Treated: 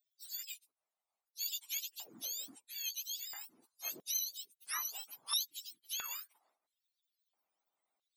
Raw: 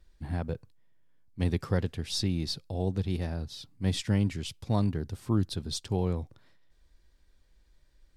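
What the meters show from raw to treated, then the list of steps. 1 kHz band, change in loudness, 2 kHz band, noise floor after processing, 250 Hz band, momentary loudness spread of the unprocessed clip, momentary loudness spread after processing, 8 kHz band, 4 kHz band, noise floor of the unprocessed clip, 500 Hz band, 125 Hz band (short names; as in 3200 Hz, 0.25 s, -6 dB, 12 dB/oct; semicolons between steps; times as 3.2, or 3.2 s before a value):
-10.5 dB, -8.0 dB, -5.0 dB, under -85 dBFS, -34.5 dB, 10 LU, 12 LU, +5.0 dB, -2.5 dB, -65 dBFS, -29.5 dB, under -40 dB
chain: spectrum mirrored in octaves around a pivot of 1100 Hz; LFO high-pass square 0.75 Hz 920–3700 Hz; harmonic-percussive split harmonic -12 dB; gain -5.5 dB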